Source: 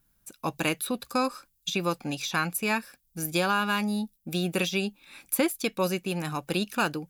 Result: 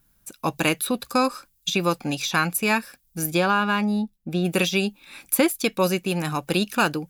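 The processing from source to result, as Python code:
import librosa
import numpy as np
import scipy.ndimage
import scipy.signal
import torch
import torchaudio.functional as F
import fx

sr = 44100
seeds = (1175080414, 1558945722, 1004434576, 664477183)

y = fx.lowpass(x, sr, hz=fx.line((3.33, 3100.0), (4.44, 1300.0)), slope=6, at=(3.33, 4.44), fade=0.02)
y = y * librosa.db_to_amplitude(5.5)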